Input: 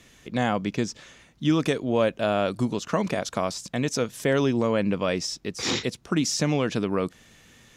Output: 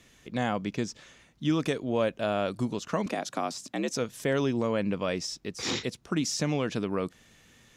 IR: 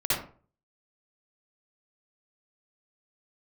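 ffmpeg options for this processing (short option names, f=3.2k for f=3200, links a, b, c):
-filter_complex "[0:a]asettb=1/sr,asplit=3[a][b][c];[a]atrim=end=3.064[d];[b]atrim=start=3.06:end=3.91,asetpts=PTS-STARTPTS,afade=t=in:d=0.004:c=qsin,afade=t=out:st=0.846:d=0.004:c=qsin,afreqshift=66[e];[c]atrim=start=3.906[f];[d][e]acrossfade=d=0.004:c1=hsin:c2=qsin[g];[g][f]acrossfade=d=0.004:c1=qsin:c2=hsin,volume=-4.5dB"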